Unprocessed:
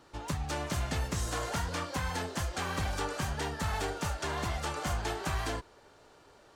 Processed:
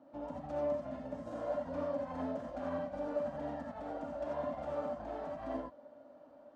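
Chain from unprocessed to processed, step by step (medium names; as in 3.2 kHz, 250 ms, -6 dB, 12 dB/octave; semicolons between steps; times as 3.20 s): compressor with a negative ratio -35 dBFS, ratio -0.5; two resonant band-passes 400 Hz, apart 1.1 oct; gated-style reverb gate 110 ms rising, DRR -1 dB; trim +5 dB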